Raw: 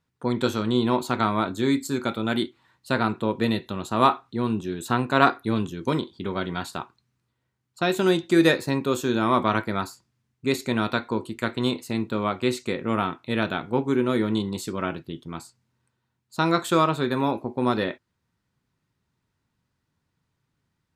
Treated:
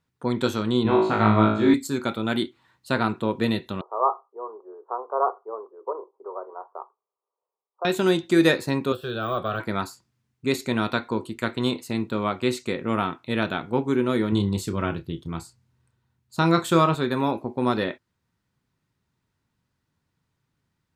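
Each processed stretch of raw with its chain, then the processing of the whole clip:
0.83–1.74 s: low-pass 2.8 kHz + flutter echo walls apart 3.2 m, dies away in 0.59 s
3.81–7.85 s: Chebyshev band-pass 410–1200 Hz, order 4 + distance through air 340 m
8.92–9.60 s: de-esser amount 95% + static phaser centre 1.4 kHz, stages 8
14.32–16.95 s: peaking EQ 72 Hz +11.5 dB 1.8 oct + doubling 30 ms -12.5 dB
whole clip: none

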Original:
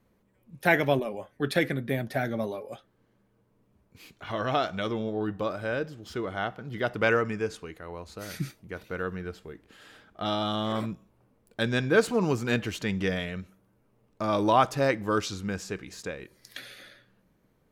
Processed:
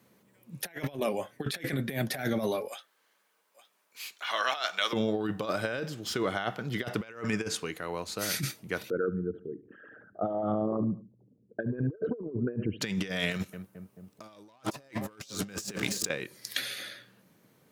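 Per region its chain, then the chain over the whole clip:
2.68–4.93 s: high-pass 930 Hz + delay 863 ms -16.5 dB
8.90–12.81 s: resonances exaggerated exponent 3 + Gaussian low-pass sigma 5.6 samples + feedback delay 72 ms, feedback 41%, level -19 dB
13.31–16.09 s: treble shelf 6.2 kHz +6.5 dB + waveshaping leveller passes 2 + filtered feedback delay 218 ms, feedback 71%, low-pass 820 Hz, level -16 dB
whole clip: high-pass 110 Hz 24 dB/octave; treble shelf 2.4 kHz +9 dB; compressor with a negative ratio -31 dBFS, ratio -0.5; trim -1.5 dB

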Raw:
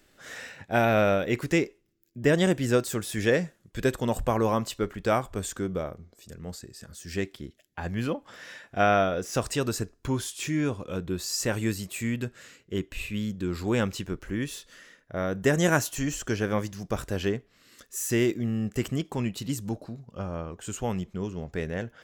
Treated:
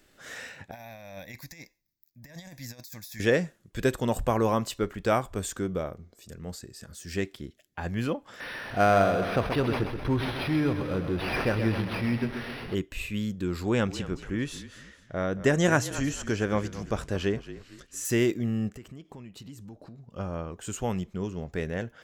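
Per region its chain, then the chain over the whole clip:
0.71–3.20 s: pre-emphasis filter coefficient 0.8 + compressor with a negative ratio -38 dBFS, ratio -0.5 + static phaser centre 2 kHz, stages 8
8.40–12.75 s: jump at every zero crossing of -34 dBFS + feedback delay 129 ms, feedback 53%, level -8 dB + decimation joined by straight lines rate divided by 6×
13.64–18.05 s: Bessel low-pass 7.5 kHz + frequency-shifting echo 225 ms, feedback 37%, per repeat -39 Hz, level -14.5 dB
18.69–20.11 s: treble shelf 5.2 kHz -7.5 dB + compression 4:1, threshold -43 dBFS
whole clip: none

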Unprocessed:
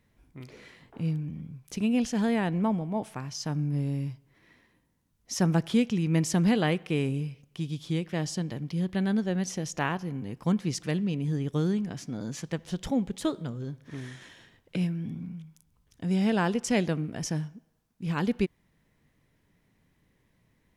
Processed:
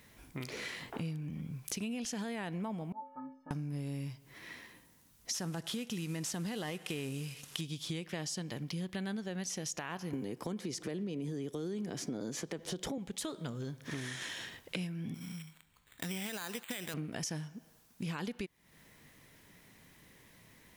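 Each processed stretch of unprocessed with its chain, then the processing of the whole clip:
2.92–3.51 s: low-pass 1.2 kHz 24 dB/octave + bass shelf 110 Hz -11.5 dB + inharmonic resonator 260 Hz, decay 0.5 s, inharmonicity 0.03
5.34–7.61 s: CVSD coder 64 kbps + band-stop 2.3 kHz, Q 15 + tape noise reduction on one side only encoder only
10.13–12.98 s: peaking EQ 390 Hz +11.5 dB 1.5 oct + band-stop 2.7 kHz, Q 18 + three bands compressed up and down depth 40%
15.14–16.94 s: dead-time distortion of 0.1 ms + tilt shelf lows -9 dB, about 1.3 kHz + careless resampling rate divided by 8×, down filtered, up hold
whole clip: tilt EQ +2 dB/octave; peak limiter -23 dBFS; compression 6:1, threshold -48 dBFS; trim +10.5 dB

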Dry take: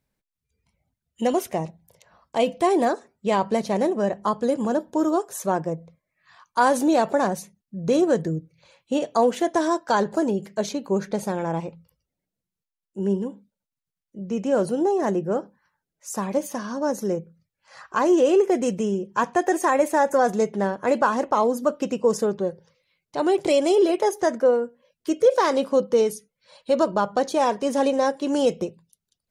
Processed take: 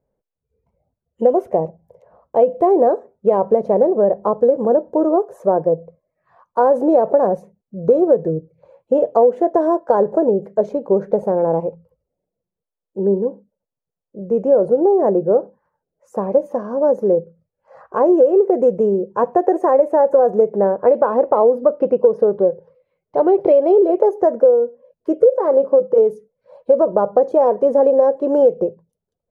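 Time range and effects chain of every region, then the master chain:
20.63–23.76 s: boxcar filter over 6 samples + treble shelf 2.1 kHz +9.5 dB
25.37–25.98 s: high-pass 59 Hz + treble shelf 3.8 kHz -8.5 dB + comb of notches 240 Hz
whole clip: FFT filter 290 Hz 0 dB, 490 Hz +13 dB, 3.6 kHz -25 dB; compression 5:1, threshold -12 dBFS; trim +2.5 dB

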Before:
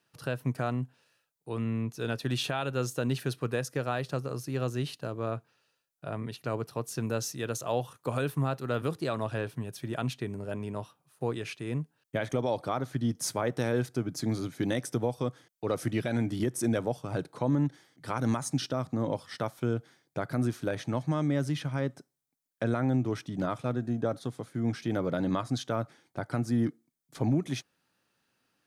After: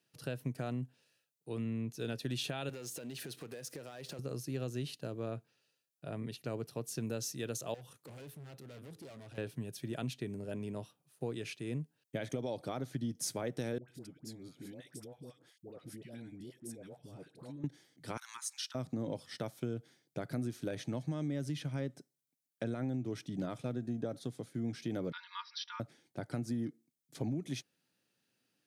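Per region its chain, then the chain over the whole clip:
2.69–4.19 s: high-pass 340 Hz 6 dB/octave + compression 12:1, threshold -45 dBFS + waveshaping leveller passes 3
7.74–9.38 s: overload inside the chain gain 35.5 dB + compression 5:1, threshold -45 dBFS
13.78–17.64 s: band-stop 6.1 kHz, Q 9.7 + compression 3:1, threshold -46 dBFS + phase dispersion highs, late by 104 ms, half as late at 800 Hz
18.17–18.75 s: steep high-pass 940 Hz 72 dB/octave + loudspeaker Doppler distortion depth 0.12 ms
25.12–25.80 s: brick-wall FIR band-pass 880–5900 Hz + comb 4.2 ms, depth 93%
whole clip: high-pass 110 Hz; peaking EQ 1.1 kHz -10 dB 1.3 oct; compression, threshold -30 dBFS; trim -2.5 dB

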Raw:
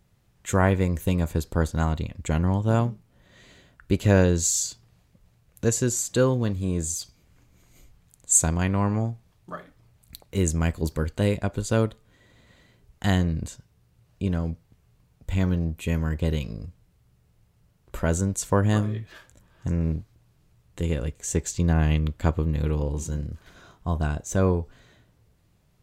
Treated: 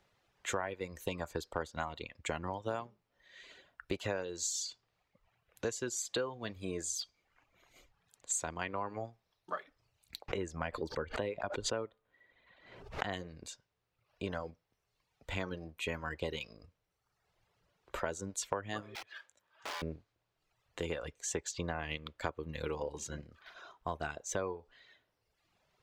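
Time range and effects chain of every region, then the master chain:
10.28–13.13 s: low-pass 1.8 kHz 6 dB/octave + swell ahead of each attack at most 80 dB/s
18.95–19.82 s: high-pass 61 Hz + integer overflow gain 33 dB + bass shelf 410 Hz -8 dB
whole clip: reverb removal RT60 1.1 s; three-band isolator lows -17 dB, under 380 Hz, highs -14 dB, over 5.6 kHz; compression 8:1, threshold -34 dBFS; trim +1.5 dB

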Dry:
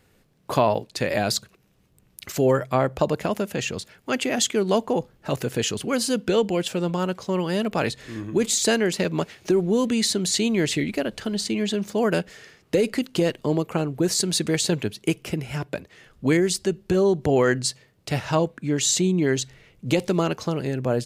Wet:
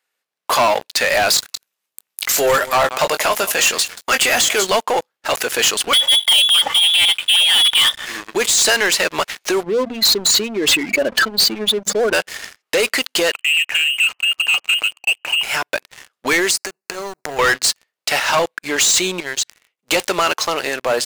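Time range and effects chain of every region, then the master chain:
1.36–4.67 s: treble shelf 5.3 kHz +8 dB + doubling 21 ms -11 dB + delay 181 ms -19 dB
5.93–8.06 s: comb 3.3 ms, depth 53% + frequency inversion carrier 3.6 kHz
9.63–12.13 s: spectral contrast enhancement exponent 2.2 + hum notches 60/120/180/240 Hz + level flattener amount 70%
13.33–15.43 s: compression 1.5:1, threshold -42 dBFS + frequency inversion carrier 3 kHz
16.51–17.39 s: companding laws mixed up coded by A + compression 8:1, threshold -28 dBFS + Butterworth band-stop 3.3 kHz, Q 2.3
19.20–19.87 s: expander -52 dBFS + compression 3:1, threshold -33 dBFS
whole clip: high-pass 930 Hz 12 dB/octave; de-esser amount 45%; waveshaping leveller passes 5

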